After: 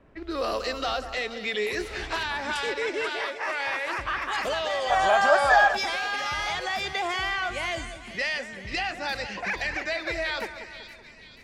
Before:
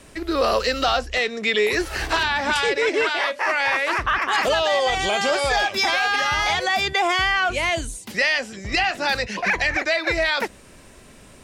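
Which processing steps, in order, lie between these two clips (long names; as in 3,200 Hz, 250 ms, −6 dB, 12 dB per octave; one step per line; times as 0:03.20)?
low-pass that shuts in the quiet parts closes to 1,400 Hz, open at −18.5 dBFS
echo with a time of its own for lows and highs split 2,100 Hz, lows 189 ms, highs 484 ms, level −10.5 dB
gain on a spectral selection 0:04.90–0:05.77, 580–1,900 Hz +12 dB
level −8.5 dB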